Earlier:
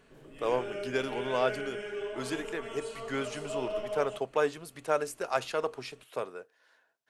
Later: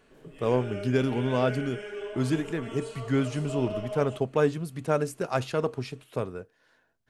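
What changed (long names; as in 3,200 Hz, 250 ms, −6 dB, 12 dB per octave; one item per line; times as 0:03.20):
speech: remove high-pass filter 520 Hz 12 dB per octave
master: add parametric band 130 Hz −7.5 dB 0.42 octaves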